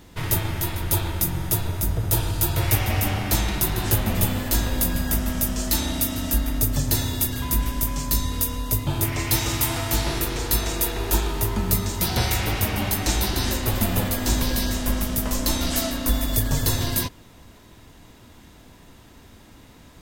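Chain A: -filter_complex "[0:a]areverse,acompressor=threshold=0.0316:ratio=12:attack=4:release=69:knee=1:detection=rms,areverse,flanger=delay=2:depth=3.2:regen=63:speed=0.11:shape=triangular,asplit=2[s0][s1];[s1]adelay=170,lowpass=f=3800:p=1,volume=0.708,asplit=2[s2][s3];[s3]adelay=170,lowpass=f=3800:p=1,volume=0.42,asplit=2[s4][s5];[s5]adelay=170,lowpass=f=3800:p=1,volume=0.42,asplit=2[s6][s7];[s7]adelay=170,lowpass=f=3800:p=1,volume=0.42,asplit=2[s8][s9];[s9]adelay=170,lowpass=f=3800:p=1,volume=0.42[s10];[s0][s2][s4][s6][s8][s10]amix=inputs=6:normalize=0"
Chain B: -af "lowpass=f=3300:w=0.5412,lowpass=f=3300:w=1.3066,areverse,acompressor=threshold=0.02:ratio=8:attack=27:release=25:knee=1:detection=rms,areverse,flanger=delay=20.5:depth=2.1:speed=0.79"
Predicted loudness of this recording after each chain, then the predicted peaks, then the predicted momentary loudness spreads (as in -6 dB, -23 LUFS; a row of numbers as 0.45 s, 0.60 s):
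-37.5 LUFS, -37.0 LUFS; -23.0 dBFS, -23.0 dBFS; 15 LU, 17 LU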